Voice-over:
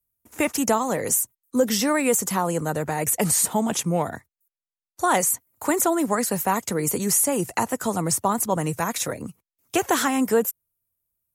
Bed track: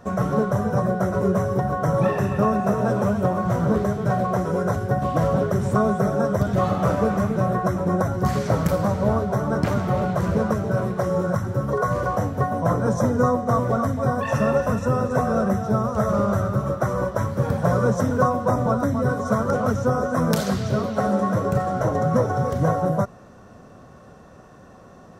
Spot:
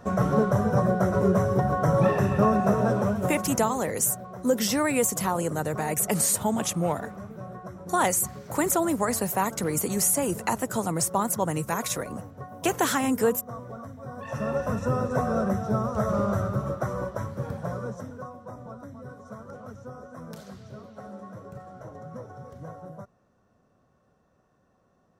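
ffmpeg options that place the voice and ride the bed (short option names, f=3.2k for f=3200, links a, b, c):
-filter_complex "[0:a]adelay=2900,volume=-3dB[a];[1:a]volume=12.5dB,afade=t=out:st=2.75:d=0.98:silence=0.141254,afade=t=in:st=14.08:d=0.76:silence=0.211349,afade=t=out:st=16.43:d=1.79:silence=0.158489[b];[a][b]amix=inputs=2:normalize=0"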